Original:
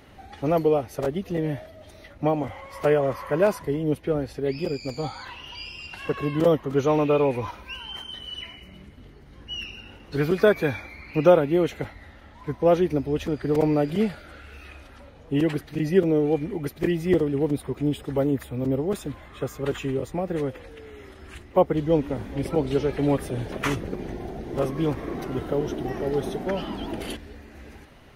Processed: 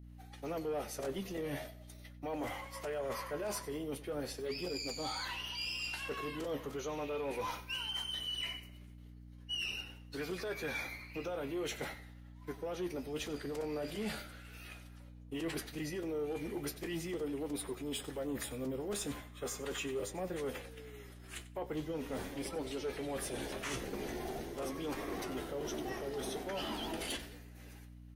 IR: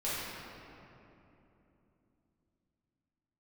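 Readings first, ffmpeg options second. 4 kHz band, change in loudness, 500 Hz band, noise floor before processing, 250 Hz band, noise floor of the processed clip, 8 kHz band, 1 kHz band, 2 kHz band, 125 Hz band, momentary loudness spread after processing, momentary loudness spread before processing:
-2.5 dB, -14.5 dB, -16.0 dB, -48 dBFS, -15.5 dB, -53 dBFS, n/a, -12.5 dB, -8.0 dB, -18.5 dB, 12 LU, 15 LU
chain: -filter_complex "[0:a]aemphasis=mode=production:type=75kf,agate=range=-33dB:threshold=-34dB:ratio=3:detection=peak,acrossover=split=9800[a][b];[b]acompressor=threshold=-54dB:ratio=4:attack=1:release=60[c];[a][c]amix=inputs=2:normalize=0,equalizer=f=94:t=o:w=2:g=-14,alimiter=limit=-18dB:level=0:latency=1:release=95,areverse,acompressor=threshold=-34dB:ratio=6,areverse,flanger=delay=9.7:depth=6:regen=51:speed=0.4:shape=triangular,aeval=exprs='val(0)+0.002*(sin(2*PI*60*n/s)+sin(2*PI*2*60*n/s)/2+sin(2*PI*3*60*n/s)/3+sin(2*PI*4*60*n/s)/4+sin(2*PI*5*60*n/s)/5)':c=same,asoftclip=type=tanh:threshold=-33.5dB,asplit=2[d][e];[e]aecho=0:1:93|186|279:0.141|0.0424|0.0127[f];[d][f]amix=inputs=2:normalize=0,volume=3dB"

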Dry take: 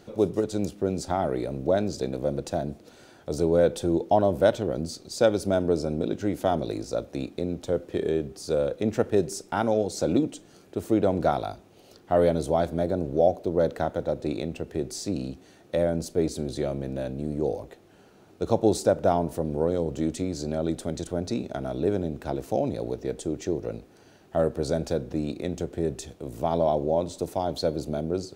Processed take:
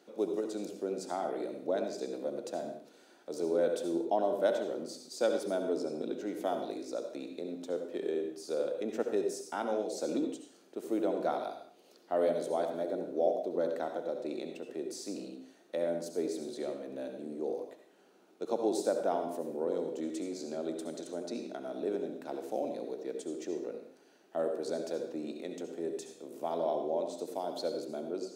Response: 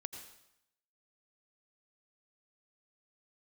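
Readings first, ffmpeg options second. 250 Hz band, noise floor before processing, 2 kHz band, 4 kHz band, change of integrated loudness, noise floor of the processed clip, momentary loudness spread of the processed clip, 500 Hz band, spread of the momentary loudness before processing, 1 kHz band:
-9.5 dB, -55 dBFS, -8.0 dB, -8.0 dB, -8.0 dB, -62 dBFS, 10 LU, -7.5 dB, 9 LU, -8.0 dB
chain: -filter_complex "[0:a]highpass=f=240:w=0.5412,highpass=f=240:w=1.3066[a];[1:a]atrim=start_sample=2205,afade=t=out:st=0.4:d=0.01,atrim=end_sample=18081,asetrate=57330,aresample=44100[b];[a][b]afir=irnorm=-1:irlink=0,volume=-3dB"

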